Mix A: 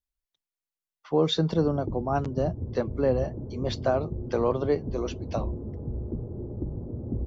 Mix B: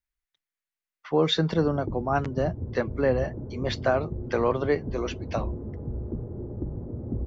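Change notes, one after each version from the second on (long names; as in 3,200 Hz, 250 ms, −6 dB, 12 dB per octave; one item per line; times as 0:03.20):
master: add parametric band 1,900 Hz +10.5 dB 1.1 octaves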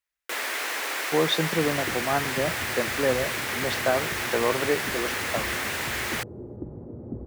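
first sound: unmuted
master: add high-pass filter 200 Hz 6 dB per octave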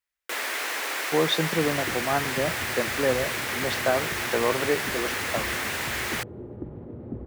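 second sound: remove low-pass filter 1,000 Hz 12 dB per octave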